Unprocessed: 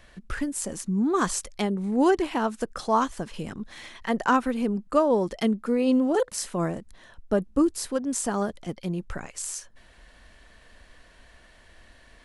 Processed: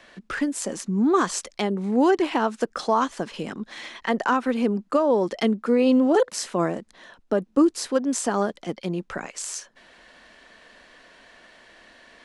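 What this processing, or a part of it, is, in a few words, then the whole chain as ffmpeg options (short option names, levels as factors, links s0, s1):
DJ mixer with the lows and highs turned down: -filter_complex "[0:a]acrossover=split=180 7500:gain=0.0891 1 0.224[s0][s1][s2];[s0][s1][s2]amix=inputs=3:normalize=0,alimiter=limit=0.158:level=0:latency=1:release=169,volume=1.88"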